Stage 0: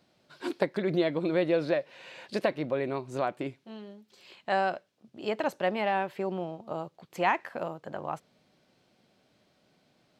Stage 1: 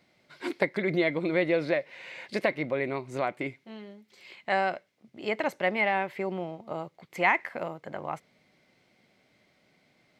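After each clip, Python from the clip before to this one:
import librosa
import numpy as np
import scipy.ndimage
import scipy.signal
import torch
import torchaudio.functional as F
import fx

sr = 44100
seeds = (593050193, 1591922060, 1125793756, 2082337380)

y = fx.peak_eq(x, sr, hz=2100.0, db=14.0, octaves=0.25)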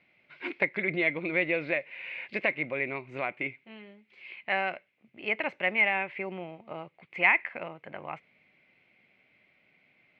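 y = fx.lowpass_res(x, sr, hz=2500.0, q=4.7)
y = F.gain(torch.from_numpy(y), -5.5).numpy()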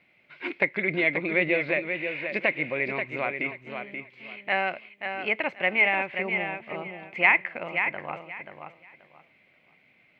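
y = fx.echo_feedback(x, sr, ms=532, feedback_pct=22, wet_db=-7.0)
y = F.gain(torch.from_numpy(y), 3.0).numpy()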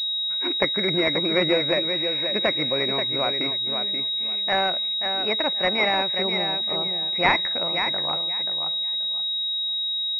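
y = fx.pwm(x, sr, carrier_hz=3800.0)
y = F.gain(torch.from_numpy(y), 4.5).numpy()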